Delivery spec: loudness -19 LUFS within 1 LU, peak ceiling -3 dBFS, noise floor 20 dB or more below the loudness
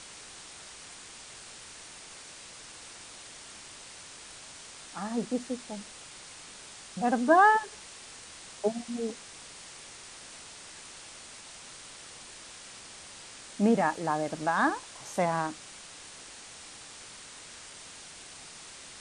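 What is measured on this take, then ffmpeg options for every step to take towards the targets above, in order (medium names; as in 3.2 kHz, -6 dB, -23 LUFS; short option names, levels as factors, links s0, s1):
noise floor -48 dBFS; noise floor target -49 dBFS; loudness -28.5 LUFS; peak level -10.0 dBFS; loudness target -19.0 LUFS
-> -af "afftdn=nr=6:nf=-48"
-af "volume=2.99,alimiter=limit=0.708:level=0:latency=1"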